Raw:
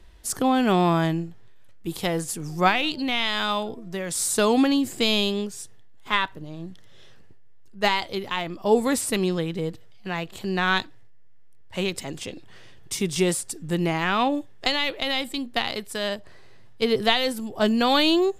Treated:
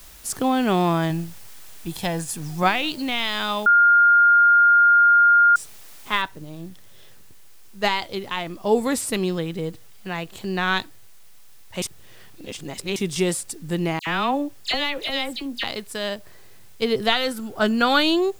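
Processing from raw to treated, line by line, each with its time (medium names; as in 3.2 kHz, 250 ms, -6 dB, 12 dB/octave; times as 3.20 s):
1.10–2.63 s: comb 1.2 ms, depth 47%
3.66–5.56 s: bleep 1.41 kHz -11 dBFS
6.22 s: noise floor step -47 dB -56 dB
11.82–12.96 s: reverse
13.99–15.64 s: phase dispersion lows, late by 77 ms, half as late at 2.3 kHz
17.12–18.03 s: peaking EQ 1.4 kHz +13 dB 0.25 oct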